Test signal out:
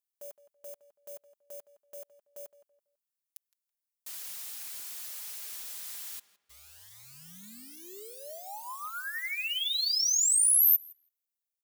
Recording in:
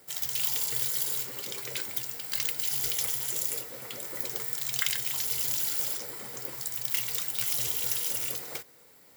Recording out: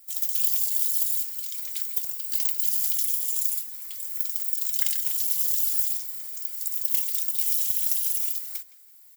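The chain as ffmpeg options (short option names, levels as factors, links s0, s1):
-filter_complex "[0:a]acrusher=bits=6:mode=log:mix=0:aa=0.000001,aderivative,aecho=1:1:4.9:0.46,asplit=2[s0][s1];[s1]adelay=165,lowpass=f=2700:p=1,volume=0.188,asplit=2[s2][s3];[s3]adelay=165,lowpass=f=2700:p=1,volume=0.31,asplit=2[s4][s5];[s5]adelay=165,lowpass=f=2700:p=1,volume=0.31[s6];[s0][s2][s4][s6]amix=inputs=4:normalize=0"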